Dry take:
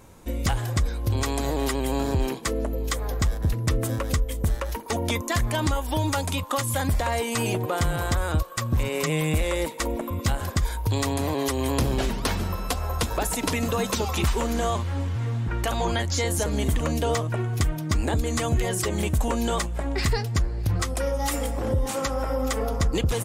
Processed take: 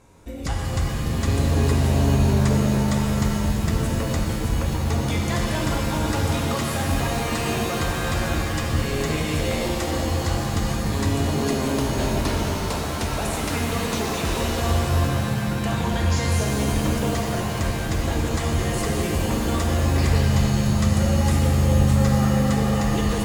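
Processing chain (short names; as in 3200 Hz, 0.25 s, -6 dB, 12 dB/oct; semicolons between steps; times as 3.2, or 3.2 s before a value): LPF 10000 Hz; notch 3100 Hz, Q 18; shimmer reverb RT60 3.4 s, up +7 st, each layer -2 dB, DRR -1.5 dB; gain -4.5 dB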